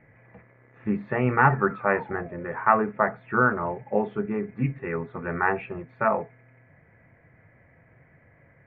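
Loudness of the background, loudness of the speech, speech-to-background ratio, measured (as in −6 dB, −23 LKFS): −43.5 LKFS, −25.5 LKFS, 18.0 dB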